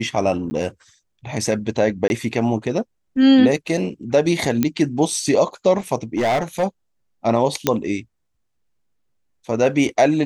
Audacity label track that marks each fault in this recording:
0.500000	0.510000	gap 10 ms
2.080000	2.100000	gap 21 ms
4.630000	4.630000	pop -5 dBFS
6.150000	6.640000	clipped -15.5 dBFS
7.670000	7.670000	pop -1 dBFS

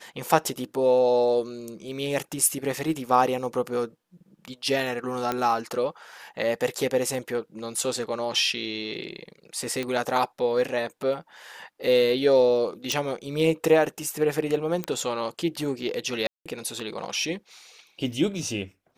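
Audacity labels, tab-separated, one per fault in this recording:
5.320000	5.320000	pop -12 dBFS
9.830000	9.830000	pop -16 dBFS
12.920000	12.920000	pop
14.840000	14.840000	pop -13 dBFS
16.270000	16.460000	gap 0.186 s

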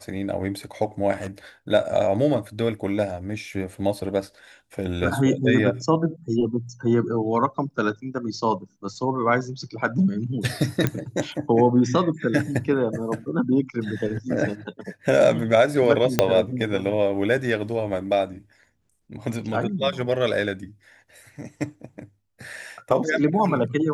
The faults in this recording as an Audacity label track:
1.120000	1.270000	clipped -24.5 dBFS
10.870000	10.870000	pop -8 dBFS
16.190000	16.190000	pop -2 dBFS

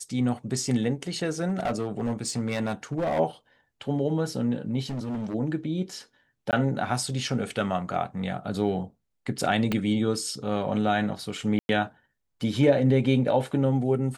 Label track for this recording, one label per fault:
1.480000	3.200000	clipped -22.5 dBFS
4.890000	5.350000	clipped -28 dBFS
6.510000	6.530000	gap 18 ms
9.720000	9.720000	pop -13 dBFS
11.590000	11.690000	gap 0.101 s

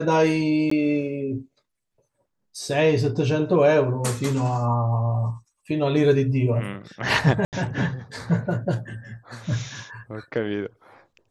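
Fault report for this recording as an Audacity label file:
0.700000	0.710000	gap 14 ms
7.450000	7.530000	gap 78 ms

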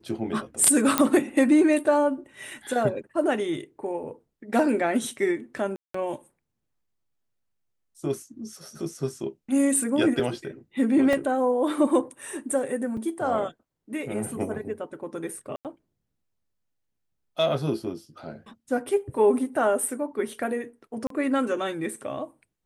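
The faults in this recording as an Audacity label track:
0.980000	0.980000	pop -3 dBFS
5.760000	5.940000	gap 0.184 s
11.130000	11.130000	gap 2.5 ms
12.970000	12.970000	gap 4.3 ms
15.560000	15.650000	gap 88 ms
21.070000	21.100000	gap 33 ms

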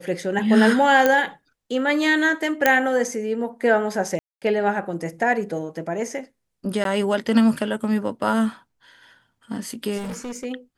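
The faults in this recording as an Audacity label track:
1.060000	1.060000	pop -5 dBFS
2.660000	2.660000	pop -2 dBFS
4.190000	4.420000	gap 0.227 s
6.840000	6.850000	gap 12 ms
9.970000	10.450000	clipped -28 dBFS

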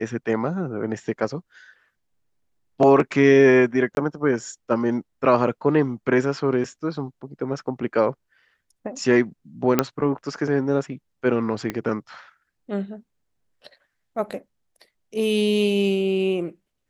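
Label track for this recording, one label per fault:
3.950000	3.970000	gap 21 ms
9.790000	9.790000	pop -3 dBFS
11.700000	11.700000	pop -12 dBFS

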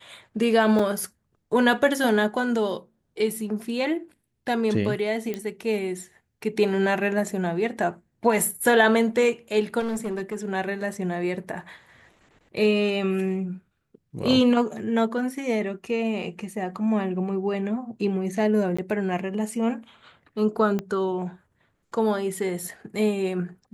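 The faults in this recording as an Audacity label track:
0.790000	0.790000	gap 3.6 ms
5.340000	5.340000	pop -16 dBFS
9.790000	10.350000	clipped -24.5 dBFS
18.770000	18.790000	gap 15 ms
20.790000	20.790000	pop -16 dBFS

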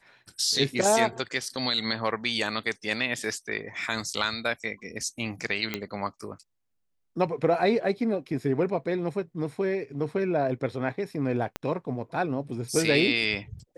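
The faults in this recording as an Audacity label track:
5.740000	5.740000	pop -13 dBFS
11.560000	11.560000	pop -15 dBFS

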